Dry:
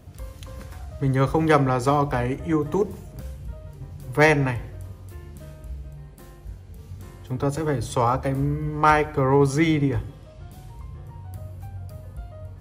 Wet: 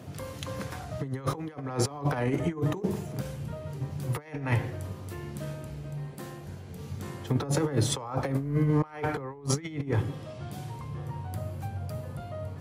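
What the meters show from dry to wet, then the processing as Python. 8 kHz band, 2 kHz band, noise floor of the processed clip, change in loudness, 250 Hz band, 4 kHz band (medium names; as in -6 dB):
+2.5 dB, -12.5 dB, -44 dBFS, -10.5 dB, -6.5 dB, -2.0 dB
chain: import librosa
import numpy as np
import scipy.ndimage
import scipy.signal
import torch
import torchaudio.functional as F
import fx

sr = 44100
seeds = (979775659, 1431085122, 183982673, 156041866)

y = scipy.signal.sosfilt(scipy.signal.butter(4, 110.0, 'highpass', fs=sr, output='sos'), x)
y = fx.high_shelf(y, sr, hz=11000.0, db=-7.5)
y = fx.over_compress(y, sr, threshold_db=-28.0, ratio=-0.5)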